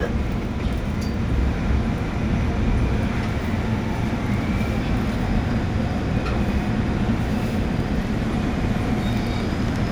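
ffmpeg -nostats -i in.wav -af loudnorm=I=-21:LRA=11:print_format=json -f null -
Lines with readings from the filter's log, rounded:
"input_i" : "-23.5",
"input_tp" : "-8.8",
"input_lra" : "0.3",
"input_thresh" : "-33.5",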